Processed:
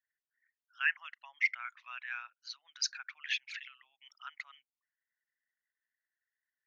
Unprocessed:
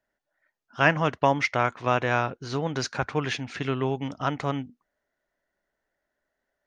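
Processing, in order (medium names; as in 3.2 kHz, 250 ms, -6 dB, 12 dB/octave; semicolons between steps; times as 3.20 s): resonances exaggerated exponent 2; inverse Chebyshev high-pass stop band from 470 Hz, stop band 70 dB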